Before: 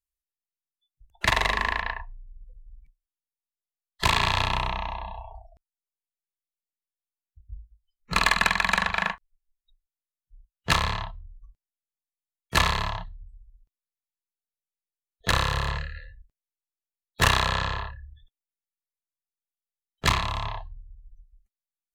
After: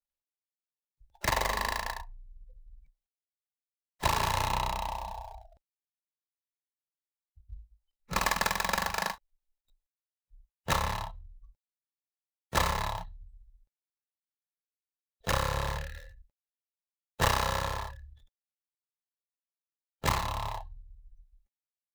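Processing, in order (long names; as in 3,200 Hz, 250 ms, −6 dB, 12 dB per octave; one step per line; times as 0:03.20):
gap after every zero crossing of 0.14 ms
hollow resonant body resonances 560/830/3,900 Hz, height 9 dB, ringing for 30 ms
level −5 dB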